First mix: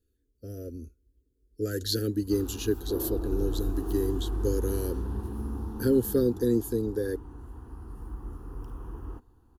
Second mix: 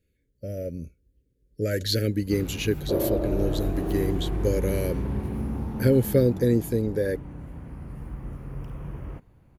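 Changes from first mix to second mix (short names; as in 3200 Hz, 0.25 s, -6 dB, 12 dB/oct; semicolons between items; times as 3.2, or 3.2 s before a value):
second sound +5.5 dB; master: remove fixed phaser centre 590 Hz, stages 6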